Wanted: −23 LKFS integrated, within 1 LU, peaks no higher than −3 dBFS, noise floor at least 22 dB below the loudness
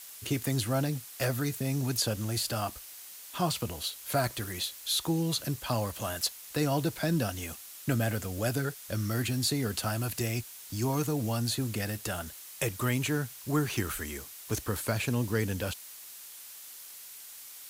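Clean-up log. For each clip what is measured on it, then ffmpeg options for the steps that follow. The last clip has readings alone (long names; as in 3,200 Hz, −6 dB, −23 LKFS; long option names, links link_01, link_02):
background noise floor −47 dBFS; target noise floor −54 dBFS; integrated loudness −31.5 LKFS; sample peak −16.0 dBFS; target loudness −23.0 LKFS
→ -af "afftdn=noise_reduction=7:noise_floor=-47"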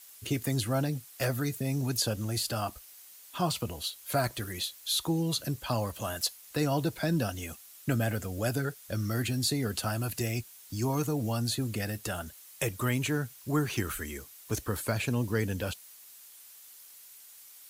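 background noise floor −52 dBFS; target noise floor −54 dBFS
→ -af "afftdn=noise_reduction=6:noise_floor=-52"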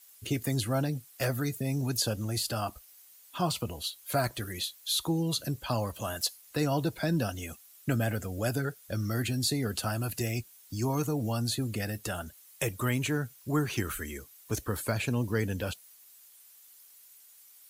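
background noise floor −56 dBFS; integrated loudness −32.0 LKFS; sample peak −16.0 dBFS; target loudness −23.0 LKFS
→ -af "volume=9dB"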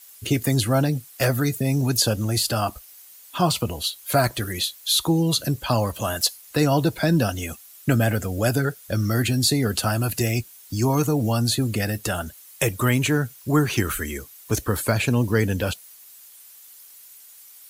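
integrated loudness −23.0 LKFS; sample peak −7.0 dBFS; background noise floor −47 dBFS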